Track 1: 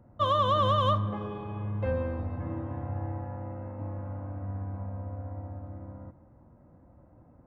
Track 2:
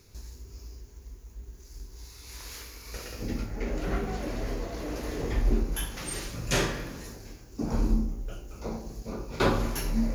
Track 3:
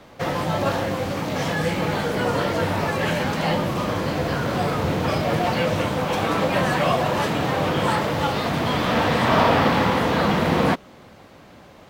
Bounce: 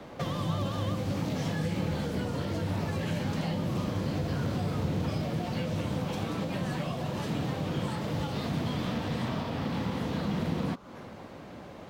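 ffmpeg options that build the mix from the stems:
ffmpeg -i stem1.wav -i stem2.wav -i stem3.wav -filter_complex "[0:a]volume=-6.5dB[link_01];[1:a]bandpass=frequency=1100:width_type=q:width=2.3:csg=0,adelay=1200,volume=-9dB[link_02];[2:a]highshelf=frequency=9600:gain=-4.5,acompressor=threshold=-26dB:ratio=6,equalizer=frequency=250:width=0.31:gain=5.5,volume=-2.5dB[link_03];[link_01][link_02][link_03]amix=inputs=3:normalize=0,acrossover=split=250|3000[link_04][link_05][link_06];[link_05]acompressor=threshold=-37dB:ratio=5[link_07];[link_04][link_07][link_06]amix=inputs=3:normalize=0" out.wav

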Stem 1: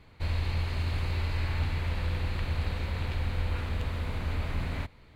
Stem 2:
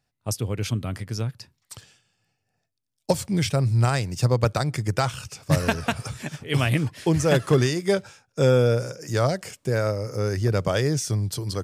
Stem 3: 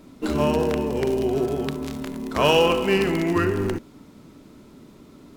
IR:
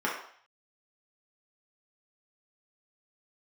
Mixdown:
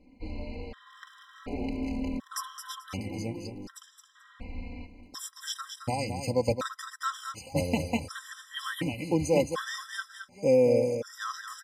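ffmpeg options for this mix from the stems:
-filter_complex "[0:a]lowpass=4100,aecho=1:1:4.2:0.9,volume=-12.5dB,asplit=3[link_01][link_02][link_03];[link_01]atrim=end=2.19,asetpts=PTS-STARTPTS,afade=type=out:start_time=2.186:duration=0.004:curve=hsin[link_04];[link_02]atrim=start=2.19:end=4.15,asetpts=PTS-STARTPTS,volume=0[link_05];[link_03]atrim=start=4.15,asetpts=PTS-STARTPTS,afade=type=in:duration=0.004:curve=hsin[link_06];[link_04][link_05][link_06]concat=n=3:v=0:a=1,asplit=2[link_07][link_08];[link_08]volume=-12dB[link_09];[1:a]adelay=2050,volume=-5.5dB,asplit=2[link_10][link_11];[link_11]volume=-7.5dB[link_12];[2:a]aemphasis=mode=reproduction:type=50fm,acompressor=threshold=-29dB:ratio=3,volume=-3dB,afade=type=in:start_time=0.81:duration=0.2:silence=0.237137,afade=type=out:start_time=2.13:duration=0.68:silence=0.398107[link_13];[link_09][link_12]amix=inputs=2:normalize=0,aecho=0:1:218|436|654:1|0.21|0.0441[link_14];[link_07][link_10][link_13][link_14]amix=inputs=4:normalize=0,aecho=1:1:3.8:0.73,afftfilt=real='re*gt(sin(2*PI*0.68*pts/sr)*(1-2*mod(floor(b*sr/1024/1000),2)),0)':imag='im*gt(sin(2*PI*0.68*pts/sr)*(1-2*mod(floor(b*sr/1024/1000),2)),0)':win_size=1024:overlap=0.75"

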